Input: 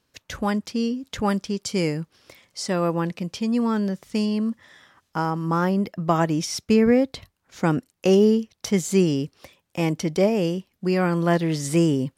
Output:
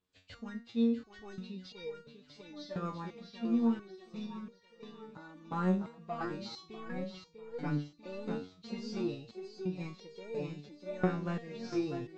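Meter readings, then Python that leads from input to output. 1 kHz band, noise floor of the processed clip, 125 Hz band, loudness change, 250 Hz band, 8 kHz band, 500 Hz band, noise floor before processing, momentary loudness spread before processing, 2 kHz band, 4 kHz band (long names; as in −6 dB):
−15.5 dB, −63 dBFS, −15.0 dB, −14.5 dB, −13.5 dB, below −25 dB, −17.0 dB, −73 dBFS, 9 LU, −15.5 dB, −16.5 dB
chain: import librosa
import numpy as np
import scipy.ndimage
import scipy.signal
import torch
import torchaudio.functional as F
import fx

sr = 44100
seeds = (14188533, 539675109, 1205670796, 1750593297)

p1 = fx.freq_compress(x, sr, knee_hz=2200.0, ratio=1.5)
p2 = fx.low_shelf(p1, sr, hz=370.0, db=3.5)
p3 = fx.level_steps(p2, sr, step_db=20)
p4 = p2 + (p3 * librosa.db_to_amplitude(-2.0))
p5 = 10.0 ** (-5.5 / 20.0) * np.tanh(p4 / 10.0 ** (-5.5 / 20.0))
p6 = p5 + fx.echo_feedback(p5, sr, ms=646, feedback_pct=53, wet_db=-7.0, dry=0)
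p7 = fx.resonator_held(p6, sr, hz=2.9, low_hz=92.0, high_hz=470.0)
y = p7 * librosa.db_to_amplitude(-8.0)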